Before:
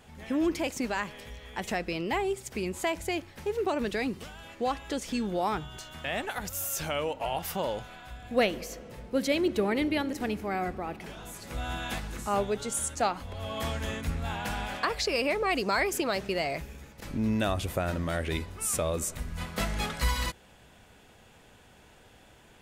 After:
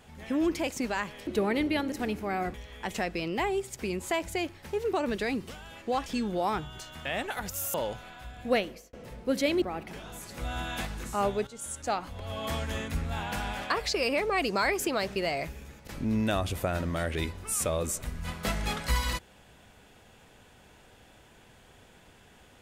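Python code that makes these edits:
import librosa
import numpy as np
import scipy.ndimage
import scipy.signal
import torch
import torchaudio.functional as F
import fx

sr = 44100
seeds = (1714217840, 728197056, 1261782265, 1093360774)

y = fx.edit(x, sr, fx.cut(start_s=4.79, length_s=0.26),
    fx.cut(start_s=6.73, length_s=0.87),
    fx.fade_out_span(start_s=8.34, length_s=0.45),
    fx.move(start_s=9.48, length_s=1.27, to_s=1.27),
    fx.fade_in_from(start_s=12.6, length_s=0.97, curve='qsin', floor_db=-14.5), tone=tone)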